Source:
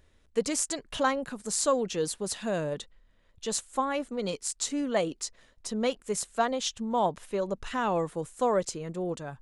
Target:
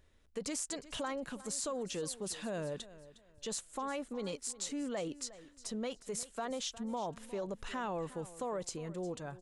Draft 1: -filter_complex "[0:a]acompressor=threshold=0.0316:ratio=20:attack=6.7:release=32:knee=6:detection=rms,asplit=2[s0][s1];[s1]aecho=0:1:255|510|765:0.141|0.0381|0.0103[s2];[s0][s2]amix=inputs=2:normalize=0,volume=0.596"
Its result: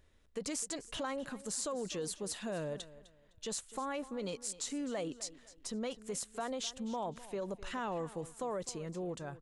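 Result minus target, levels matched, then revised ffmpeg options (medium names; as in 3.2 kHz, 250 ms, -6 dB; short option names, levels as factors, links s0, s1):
echo 104 ms early
-filter_complex "[0:a]acompressor=threshold=0.0316:ratio=20:attack=6.7:release=32:knee=6:detection=rms,asplit=2[s0][s1];[s1]aecho=0:1:359|718|1077:0.141|0.0381|0.0103[s2];[s0][s2]amix=inputs=2:normalize=0,volume=0.596"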